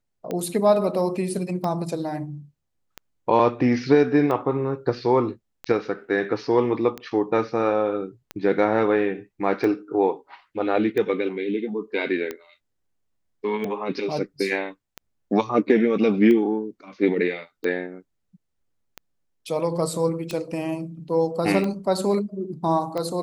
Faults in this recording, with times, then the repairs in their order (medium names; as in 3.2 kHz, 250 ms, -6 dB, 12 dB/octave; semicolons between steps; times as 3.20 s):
tick 45 rpm -16 dBFS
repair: de-click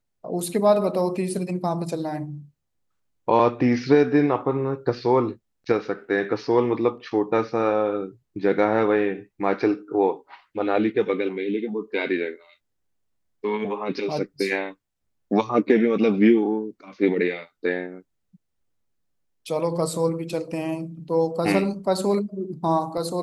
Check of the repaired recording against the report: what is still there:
nothing left